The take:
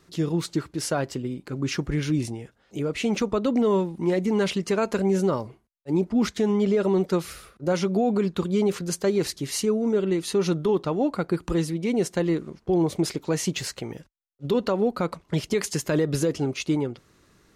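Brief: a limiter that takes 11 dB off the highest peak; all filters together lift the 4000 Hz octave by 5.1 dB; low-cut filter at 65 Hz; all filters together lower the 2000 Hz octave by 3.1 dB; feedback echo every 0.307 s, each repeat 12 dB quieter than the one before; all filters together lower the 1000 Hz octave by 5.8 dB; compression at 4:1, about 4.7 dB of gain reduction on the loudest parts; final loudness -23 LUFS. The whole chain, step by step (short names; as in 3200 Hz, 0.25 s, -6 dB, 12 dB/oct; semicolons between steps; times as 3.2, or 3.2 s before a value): HPF 65 Hz; bell 1000 Hz -7.5 dB; bell 2000 Hz -4.5 dB; bell 4000 Hz +8 dB; compressor 4:1, threshold -24 dBFS; limiter -26 dBFS; feedback echo 0.307 s, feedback 25%, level -12 dB; gain +11.5 dB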